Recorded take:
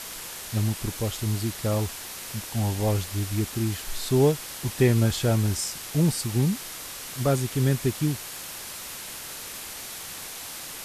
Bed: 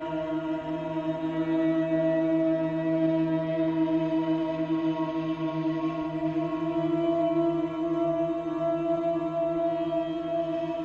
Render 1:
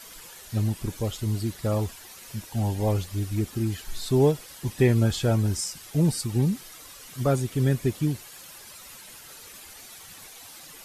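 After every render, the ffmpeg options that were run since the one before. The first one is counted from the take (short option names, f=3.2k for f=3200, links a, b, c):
-af "afftdn=nr=11:nf=-38"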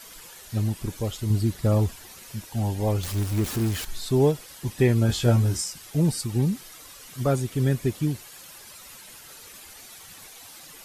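-filter_complex "[0:a]asettb=1/sr,asplit=3[a][b][c];[a]atrim=end=1.304[d];[b]atrim=start=1.3:end=2.23,asetpts=PTS-STARTPTS,afade=t=in:d=0.004:c=qsin,afade=t=out:st=0.926:d=0.004:c=qsin,lowshelf=f=340:g=6.5[e];[c]atrim=start=2.226[f];[d][e]acrossfade=d=0.004:c1=hsin:c2=qsin[g];[g][f]acrossfade=d=0.004:c1=qsin:c2=hsin,asettb=1/sr,asplit=3[h][i][j];[h]atrim=end=3.034[k];[i]atrim=start=3.03:end=3.85,asetpts=PTS-STARTPTS,afade=t=in:d=0.004:c=qsin,afade=t=out:st=0.816:d=0.004:c=qsin,aeval=exprs='val(0)+0.5*0.0355*sgn(val(0))':c=same[l];[j]atrim=start=3.846[m];[k][l]acrossfade=d=0.004:c1=hsin:c2=qsin[n];[n][m]acrossfade=d=0.004:c1=qsin:c2=hsin,asettb=1/sr,asplit=3[o][p][q];[o]atrim=end=5.074[r];[p]atrim=start=5.07:end=5.62,asetpts=PTS-STARTPTS,afade=t=in:d=0.004:c=qsin,afade=t=out:st=0.546:d=0.004:c=qsin,asplit=2[s][t];[t]adelay=17,volume=-3dB[u];[s][u]amix=inputs=2:normalize=0,atrim=end_sample=24255[v];[q]atrim=start=5.616[w];[r][v]acrossfade=d=0.004:c1=hsin:c2=qsin[x];[x][w]acrossfade=d=0.004:c1=qsin:c2=hsin"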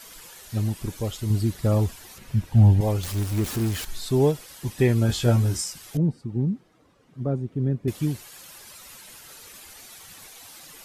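-filter_complex "[0:a]asettb=1/sr,asplit=3[a][b][c];[a]atrim=end=2.184[d];[b]atrim=start=2.18:end=2.81,asetpts=PTS-STARTPTS,afade=t=in:d=0.004:c=qsin,afade=t=out:st=0.626:d=0.004:c=qsin,bass=f=250:g=13,treble=f=4k:g=-9[e];[c]atrim=start=2.806[f];[d][e]acrossfade=d=0.004:c1=hsin:c2=qsin[g];[g][f]acrossfade=d=0.004:c1=qsin:c2=hsin,asettb=1/sr,asplit=3[h][i][j];[h]atrim=end=5.974[k];[i]atrim=start=5.97:end=7.88,asetpts=PTS-STARTPTS,afade=t=in:d=0.004:c=qsin,afade=t=out:st=1.906:d=0.004:c=qsin,bandpass=f=210:t=q:w=0.77[l];[j]atrim=start=7.876[m];[k][l]acrossfade=d=0.004:c1=hsin:c2=qsin[n];[n][m]acrossfade=d=0.004:c1=qsin:c2=hsin"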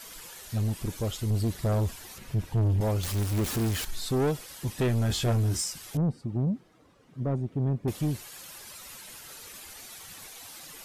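-af "asoftclip=type=tanh:threshold=-21.5dB"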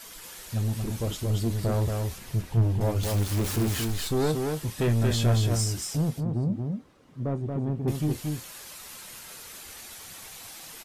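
-filter_complex "[0:a]asplit=2[a][b];[b]adelay=26,volume=-12dB[c];[a][c]amix=inputs=2:normalize=0,aecho=1:1:230:0.631"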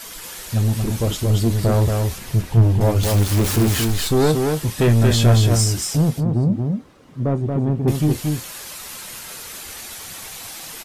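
-af "volume=9dB"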